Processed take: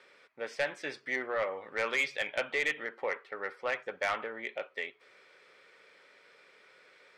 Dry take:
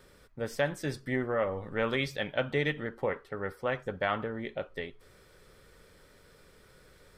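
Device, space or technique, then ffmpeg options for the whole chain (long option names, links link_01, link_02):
intercom: -af "highpass=490,lowpass=4900,equalizer=frequency=2300:width_type=o:width=0.56:gain=9,asoftclip=type=tanh:threshold=-21.5dB"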